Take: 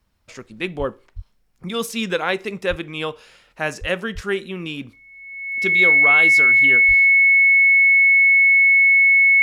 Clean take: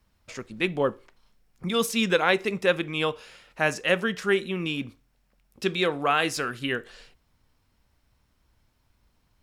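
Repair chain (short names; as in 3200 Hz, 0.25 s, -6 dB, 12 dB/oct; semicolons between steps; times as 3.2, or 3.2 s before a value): notch 2200 Hz, Q 30; de-plosive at 0.78/1.15/2.69/3.8/4.14/6.87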